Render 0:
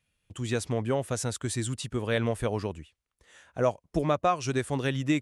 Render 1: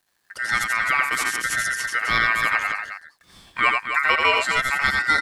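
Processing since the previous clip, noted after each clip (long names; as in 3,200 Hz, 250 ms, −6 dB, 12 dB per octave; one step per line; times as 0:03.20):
bit-depth reduction 12 bits, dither none
loudspeakers that aren't time-aligned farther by 30 metres −4 dB, 90 metres −8 dB
ring modulation 1,700 Hz
level +8 dB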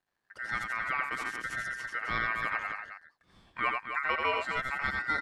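low-pass filter 1,400 Hz 6 dB per octave
level −7.5 dB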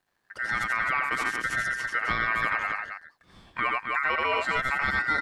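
brickwall limiter −23 dBFS, peak gain reduction 7 dB
level +7.5 dB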